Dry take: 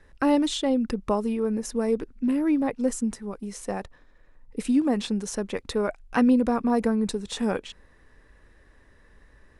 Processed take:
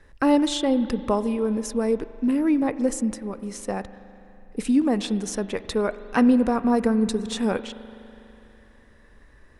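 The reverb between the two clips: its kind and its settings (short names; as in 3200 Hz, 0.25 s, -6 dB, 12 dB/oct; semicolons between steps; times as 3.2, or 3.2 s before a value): spring tank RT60 3.1 s, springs 41 ms, chirp 80 ms, DRR 13.5 dB; gain +2 dB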